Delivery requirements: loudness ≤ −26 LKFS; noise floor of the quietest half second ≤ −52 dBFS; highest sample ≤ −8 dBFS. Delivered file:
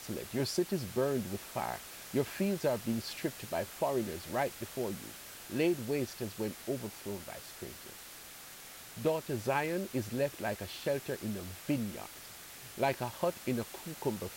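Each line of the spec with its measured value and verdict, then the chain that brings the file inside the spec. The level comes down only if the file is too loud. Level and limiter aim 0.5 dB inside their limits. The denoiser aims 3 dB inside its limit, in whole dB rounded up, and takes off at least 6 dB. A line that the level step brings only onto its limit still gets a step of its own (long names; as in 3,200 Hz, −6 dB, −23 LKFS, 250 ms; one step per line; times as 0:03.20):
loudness −36.0 LKFS: in spec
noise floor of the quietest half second −50 dBFS: out of spec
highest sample −18.0 dBFS: in spec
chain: broadband denoise 6 dB, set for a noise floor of −50 dBFS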